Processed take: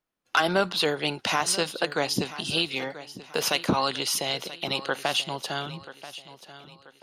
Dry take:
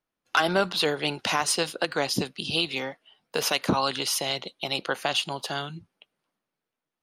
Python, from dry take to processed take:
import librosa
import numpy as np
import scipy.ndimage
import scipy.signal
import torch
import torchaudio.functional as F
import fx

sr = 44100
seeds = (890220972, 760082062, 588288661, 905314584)

y = fx.echo_feedback(x, sr, ms=984, feedback_pct=39, wet_db=-15.5)